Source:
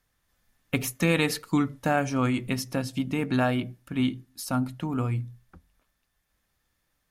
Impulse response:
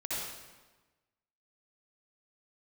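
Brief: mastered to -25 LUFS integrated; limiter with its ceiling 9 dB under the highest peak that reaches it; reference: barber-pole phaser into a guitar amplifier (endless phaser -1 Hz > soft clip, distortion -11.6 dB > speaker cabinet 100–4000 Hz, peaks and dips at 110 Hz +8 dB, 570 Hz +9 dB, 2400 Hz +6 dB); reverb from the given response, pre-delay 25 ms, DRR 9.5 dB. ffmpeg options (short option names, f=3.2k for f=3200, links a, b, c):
-filter_complex "[0:a]alimiter=limit=-20dB:level=0:latency=1,asplit=2[a][b];[1:a]atrim=start_sample=2205,adelay=25[c];[b][c]afir=irnorm=-1:irlink=0,volume=-14dB[d];[a][d]amix=inputs=2:normalize=0,asplit=2[e][f];[f]afreqshift=-1[g];[e][g]amix=inputs=2:normalize=1,asoftclip=threshold=-31dB,highpass=100,equalizer=f=110:t=q:w=4:g=8,equalizer=f=570:t=q:w=4:g=9,equalizer=f=2.4k:t=q:w=4:g=6,lowpass=f=4k:w=0.5412,lowpass=f=4k:w=1.3066,volume=11.5dB"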